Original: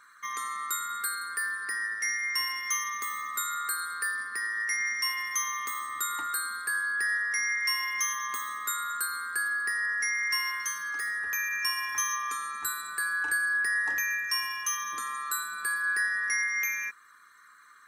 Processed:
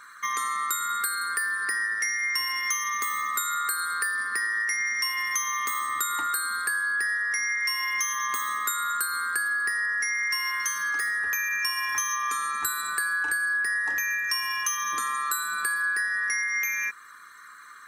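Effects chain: compression, threshold -33 dBFS, peak gain reduction 9 dB; trim +8.5 dB

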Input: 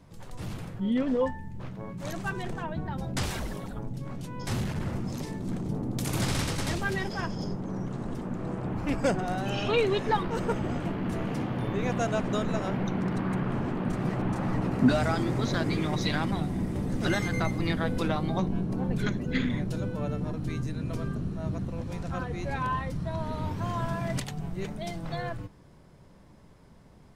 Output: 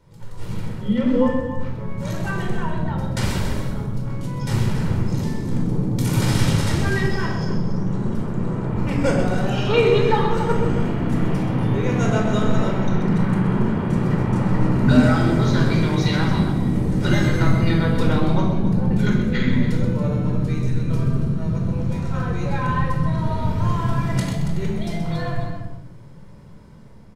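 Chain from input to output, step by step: level rider gain up to 4.5 dB; loudspeakers at several distances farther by 44 m -9 dB, 96 m -11 dB; reverberation RT60 0.80 s, pre-delay 19 ms, DRR 0.5 dB; trim -3.5 dB

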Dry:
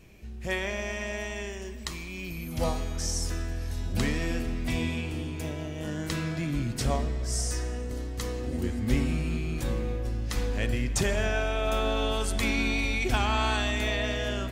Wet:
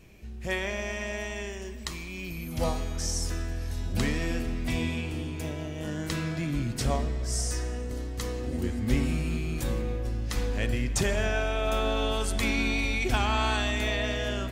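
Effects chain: 9.03–9.82 s: treble shelf 7.9 kHz +6 dB

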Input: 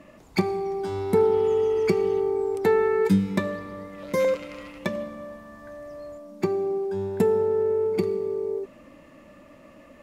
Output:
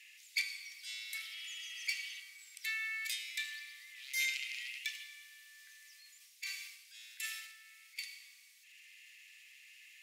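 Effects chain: steep high-pass 2.1 kHz 48 dB/octave; transient shaper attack -8 dB, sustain +1 dB, from 6.20 s sustain +10 dB, from 7.55 s sustain +2 dB; trim +6.5 dB

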